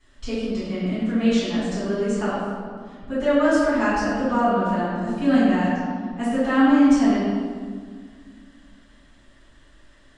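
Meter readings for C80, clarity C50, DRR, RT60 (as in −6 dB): 0.0 dB, −2.5 dB, −14.0 dB, 1.8 s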